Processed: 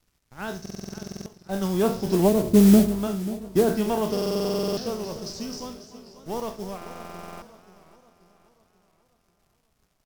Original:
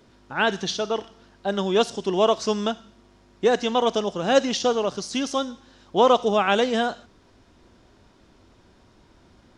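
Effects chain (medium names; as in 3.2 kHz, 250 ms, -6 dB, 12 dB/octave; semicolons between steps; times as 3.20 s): spectral sustain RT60 0.36 s; Doppler pass-by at 2.66 s, 8 m/s, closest 1.7 m; added noise pink -67 dBFS; resonant high shelf 4.2 kHz +9.5 dB, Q 3; crossover distortion -55 dBFS; delay 280 ms -15 dB; low-pass that closes with the level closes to 380 Hz, closed at -22.5 dBFS; tone controls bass +13 dB, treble -6 dB; modulation noise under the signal 18 dB; wide varispeed 0.952×; buffer glitch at 0.61/4.12/6.77 s, samples 2048, times 13; modulated delay 535 ms, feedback 49%, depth 121 cents, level -15.5 dB; trim +8.5 dB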